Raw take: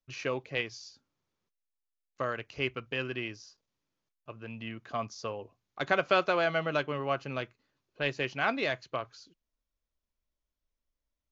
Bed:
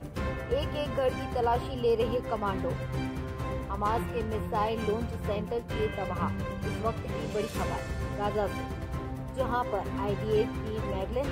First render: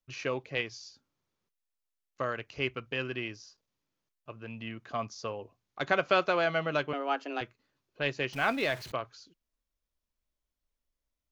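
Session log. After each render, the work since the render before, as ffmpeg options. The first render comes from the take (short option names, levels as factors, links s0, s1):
-filter_complex "[0:a]asettb=1/sr,asplit=3[s0][s1][s2];[s0]atrim=end=6.934[s3];[s1]atrim=start=6.93:end=7.41,asetpts=PTS-STARTPTS,afade=t=in:d=0.004:c=qsin,afade=t=out:st=0.476:d=0.004:c=qsin,afreqshift=140[s4];[s2]atrim=start=7.406[s5];[s3][s4]acrossfade=d=0.004:c1=hsin:c2=qsin[s6];[s6][s5]acrossfade=d=0.004:c1=qsin:c2=hsin,asettb=1/sr,asplit=3[s7][s8][s9];[s7]atrim=end=8.334[s10];[s8]atrim=start=8.33:end=8.92,asetpts=PTS-STARTPTS,afade=t=in:d=0.004:c=qsin,afade=t=out:st=0.586:d=0.004:c=qsin,aeval=exprs='val(0)+0.5*0.00841*sgn(val(0))':c=same[s11];[s9]atrim=start=8.916[s12];[s10][s11]acrossfade=d=0.004:c1=hsin:c2=qsin[s13];[s13][s12]acrossfade=d=0.004:c1=qsin:c2=hsin"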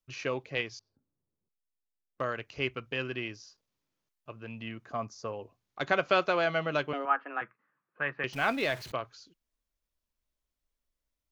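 -filter_complex "[0:a]asettb=1/sr,asplit=3[s0][s1][s2];[s0]atrim=end=0.794[s3];[s1]atrim=start=0.79:end=2.21,asetpts=PTS-STARTPTS,afade=t=in:d=0.004:c=qsin,afade=t=out:st=1.416:d=0.004:c=qsin,adynamicsmooth=sensitivity=5.5:basefreq=560[s4];[s2]atrim=start=2.206[s5];[s3][s4]acrossfade=d=0.004:c1=hsin:c2=qsin[s6];[s6][s5]acrossfade=d=0.004:c1=qsin:c2=hsin,asettb=1/sr,asplit=3[s7][s8][s9];[s7]atrim=end=4.854[s10];[s8]atrim=start=4.85:end=5.33,asetpts=PTS-STARTPTS,afade=t=in:d=0.004:c=qsin,afade=t=out:st=0.476:d=0.004:c=qsin,equalizer=f=3300:w=1.2:g=-10.5[s11];[s9]atrim=start=5.326[s12];[s10][s11]acrossfade=d=0.004:c1=hsin:c2=qsin[s13];[s13][s12]acrossfade=d=0.004:c1=qsin:c2=hsin,asettb=1/sr,asplit=3[s14][s15][s16];[s14]atrim=end=7.054[s17];[s15]atrim=start=7.05:end=8.24,asetpts=PTS-STARTPTS,afade=t=in:d=0.004:c=qsin,afade=t=out:st=1.186:d=0.004:c=qsin,highpass=f=160:w=0.5412,highpass=f=160:w=1.3066,equalizer=f=260:t=q:w=4:g=-8,equalizer=f=390:t=q:w=4:g=-9,equalizer=f=620:t=q:w=4:g=-6,equalizer=f=1200:t=q:w=4:g=9,equalizer=f=1700:t=q:w=4:g=6,lowpass=f=2100:w=0.5412,lowpass=f=2100:w=1.3066[s18];[s16]atrim=start=8.236[s19];[s17][s18]acrossfade=d=0.004:c1=hsin:c2=qsin[s20];[s20][s19]acrossfade=d=0.004:c1=qsin:c2=hsin"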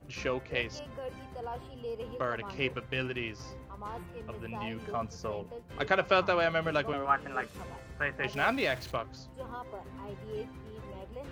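-filter_complex "[1:a]volume=0.237[s0];[0:a][s0]amix=inputs=2:normalize=0"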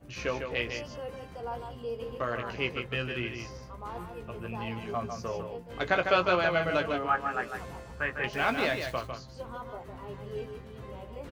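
-filter_complex "[0:a]asplit=2[s0][s1];[s1]adelay=17,volume=0.447[s2];[s0][s2]amix=inputs=2:normalize=0,aecho=1:1:152:0.473"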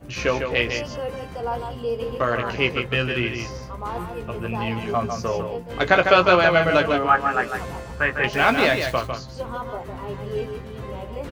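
-af "volume=3.16,alimiter=limit=0.794:level=0:latency=1"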